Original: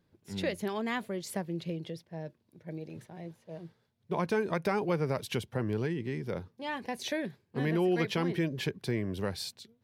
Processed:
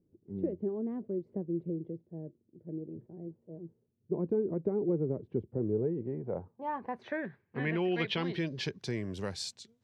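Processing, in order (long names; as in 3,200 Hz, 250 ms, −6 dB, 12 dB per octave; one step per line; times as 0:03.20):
low-pass filter sweep 360 Hz → 7,100 Hz, 0:05.51–0:08.99
level −3.5 dB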